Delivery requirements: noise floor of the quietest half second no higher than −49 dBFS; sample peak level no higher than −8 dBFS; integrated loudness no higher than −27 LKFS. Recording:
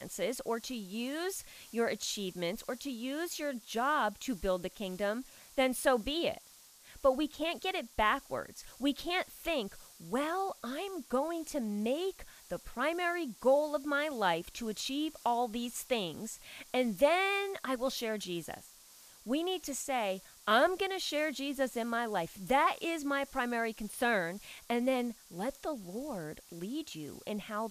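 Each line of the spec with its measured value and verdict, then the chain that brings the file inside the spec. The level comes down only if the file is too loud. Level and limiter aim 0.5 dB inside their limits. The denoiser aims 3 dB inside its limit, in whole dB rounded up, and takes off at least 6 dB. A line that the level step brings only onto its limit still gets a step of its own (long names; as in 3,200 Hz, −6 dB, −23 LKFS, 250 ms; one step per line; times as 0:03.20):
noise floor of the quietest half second −58 dBFS: in spec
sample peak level −14.0 dBFS: in spec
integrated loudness −34.0 LKFS: in spec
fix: no processing needed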